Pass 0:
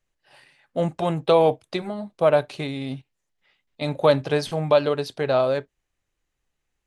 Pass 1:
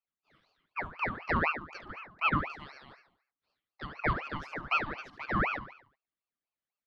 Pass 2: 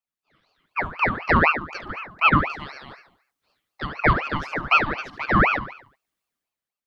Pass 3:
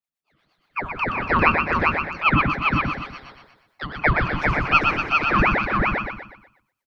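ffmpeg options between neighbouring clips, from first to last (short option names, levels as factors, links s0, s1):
-filter_complex "[0:a]asplit=3[s0][s1][s2];[s0]bandpass=f=730:t=q:w=8,volume=1[s3];[s1]bandpass=f=1090:t=q:w=8,volume=0.501[s4];[s2]bandpass=f=2440:t=q:w=8,volume=0.355[s5];[s3][s4][s5]amix=inputs=3:normalize=0,aecho=1:1:72|144|216|288|360:0.335|0.161|0.0772|0.037|0.0178,aeval=exprs='val(0)*sin(2*PI*1200*n/s+1200*0.65/4*sin(2*PI*4*n/s))':c=same"
-af "dynaudnorm=f=110:g=11:m=3.98"
-filter_complex "[0:a]asplit=2[s0][s1];[s1]aecho=0:1:123|246|369|492|615:0.596|0.238|0.0953|0.0381|0.0152[s2];[s0][s2]amix=inputs=2:normalize=0,acrossover=split=510[s3][s4];[s3]aeval=exprs='val(0)*(1-0.7/2+0.7/2*cos(2*PI*8.5*n/s))':c=same[s5];[s4]aeval=exprs='val(0)*(1-0.7/2-0.7/2*cos(2*PI*8.5*n/s))':c=same[s6];[s5][s6]amix=inputs=2:normalize=0,asplit=2[s7][s8];[s8]aecho=0:1:398:0.708[s9];[s7][s9]amix=inputs=2:normalize=0,volume=1.19"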